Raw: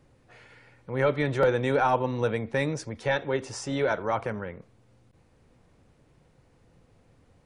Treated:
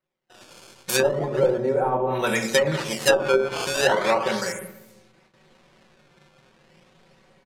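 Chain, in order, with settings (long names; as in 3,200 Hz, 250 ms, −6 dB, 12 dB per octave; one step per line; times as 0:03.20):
automatic gain control gain up to 6.5 dB
comb filter 5.3 ms, depth 77%
rectangular room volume 240 cubic metres, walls mixed, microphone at 0.84 metres
sample-and-hold swept by an LFO 13×, swing 160% 0.36 Hz
RIAA equalisation recording
low-pass that shuts in the quiet parts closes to 2,000 Hz, open at −34.5 dBFS
noise gate with hold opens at −47 dBFS
high-shelf EQ 4,100 Hz +9.5 dB, from 0:02.18 +2.5 dB
treble cut that deepens with the level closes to 520 Hz, closed at −5.5 dBFS
level −1 dB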